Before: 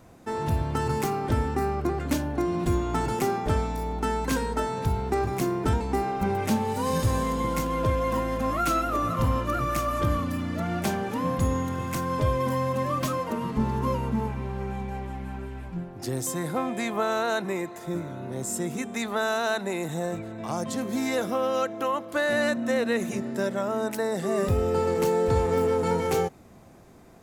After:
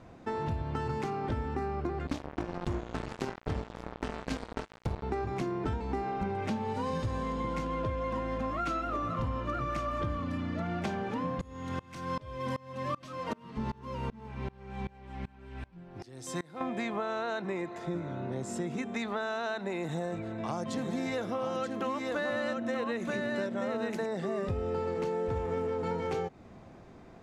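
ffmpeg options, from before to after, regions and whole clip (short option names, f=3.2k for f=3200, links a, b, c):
-filter_complex "[0:a]asettb=1/sr,asplit=3[a][b][c];[a]atrim=end=2.074[d];[b]atrim=start=2.07:end=5.03,asetpts=PTS-STARTPTS,afade=t=in:d=0.004:c=qsin,afade=t=out:st=2.956:d=0.004:c=qsin,equalizer=f=1.2k:t=o:w=1.9:g=-10,acrusher=bits=3:mix=0:aa=0.5[e];[c]atrim=start=5.026[f];[d][e]acrossfade=d=0.004:c1=hsin:c2=qsin[g];[g][f]acrossfade=d=0.004:c1=qsin:c2=hsin,asettb=1/sr,asplit=3[h][i][j];[h]atrim=end=11.414[k];[i]atrim=start=11.41:end=16.61,asetpts=PTS-STARTPTS,afade=t=in:d=0.004:c=qsin,afade=t=out:st=5.196:d=0.004:c=qsin,highshelf=f=2.6k:g=10.5,bandreject=f=6.9k:w=15,aeval=exprs='val(0)*pow(10,-27*if(lt(mod(-2.6*n/s,1),2*abs(-2.6)/1000),1-mod(-2.6*n/s,1)/(2*abs(-2.6)/1000),(mod(-2.6*n/s,1)-2*abs(-2.6)/1000)/(1-2*abs(-2.6)/1000))/20)':c=same[l];[j]atrim=start=16.606[m];[k][l]acrossfade=d=0.004:c1=hsin:c2=qsin[n];[n][m]acrossfade=d=0.004:c1=qsin:c2=hsin,asettb=1/sr,asplit=3[o][p][q];[o]atrim=end=19.844[r];[p]atrim=start=19.84:end=24.06,asetpts=PTS-STARTPTS,afade=t=in:d=0.004:c=qsin,afade=t=out:st=4.216:d=0.004:c=qsin,highshelf=f=9.5k:g=10.5,aecho=1:1:931:0.668,atrim=end_sample=186102[s];[q]atrim=start=24.056[t];[r][s]acrossfade=d=0.004:c1=hsin:c2=qsin[u];[u][t]acrossfade=d=0.004:c1=qsin:c2=hsin,asettb=1/sr,asplit=3[v][w][x];[v]atrim=end=25.134[y];[w]atrim=start=25.13:end=25.72,asetpts=PTS-STARTPTS,afade=t=in:d=0.004:c=qsin,afade=t=out:st=0.586:d=0.004:c=qsin,equalizer=f=4.3k:w=4.1:g=-9.5,acrusher=bits=7:mode=log:mix=0:aa=0.000001[z];[x]atrim=start=25.716[aa];[y][z]acrossfade=d=0.004:c1=hsin:c2=qsin[ab];[ab][aa]acrossfade=d=0.004:c1=qsin:c2=hsin,lowpass=4.2k,acompressor=threshold=-31dB:ratio=4"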